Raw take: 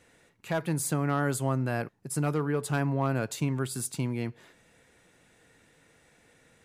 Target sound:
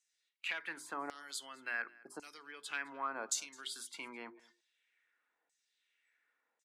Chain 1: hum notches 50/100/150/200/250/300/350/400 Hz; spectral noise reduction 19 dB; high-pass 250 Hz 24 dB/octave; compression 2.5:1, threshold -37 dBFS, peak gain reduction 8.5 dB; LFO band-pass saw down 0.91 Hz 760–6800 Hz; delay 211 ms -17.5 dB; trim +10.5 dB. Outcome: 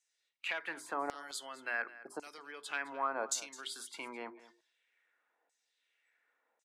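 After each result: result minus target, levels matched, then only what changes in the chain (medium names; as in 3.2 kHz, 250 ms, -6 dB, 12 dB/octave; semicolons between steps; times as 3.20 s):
500 Hz band +5.0 dB; echo-to-direct +6 dB
add after compression: peaking EQ 630 Hz -8 dB 1.6 oct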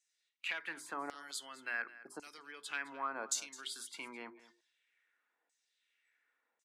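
echo-to-direct +6 dB
change: delay 211 ms -23.5 dB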